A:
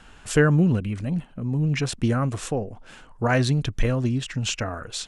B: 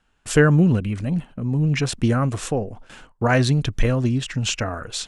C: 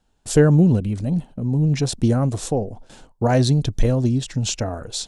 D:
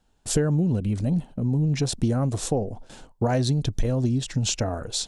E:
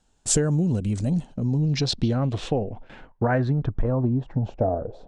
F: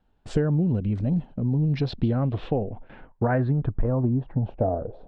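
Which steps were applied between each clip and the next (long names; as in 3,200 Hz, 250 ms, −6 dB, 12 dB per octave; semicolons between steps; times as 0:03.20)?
noise gate with hold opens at −35 dBFS; level +3 dB
flat-topped bell 1,800 Hz −10 dB; level +1.5 dB
downward compressor 6 to 1, threshold −19 dBFS, peak gain reduction 10.5 dB
low-pass filter sweep 7,800 Hz → 620 Hz, 0:01.06–0:04.75
high-frequency loss of the air 390 metres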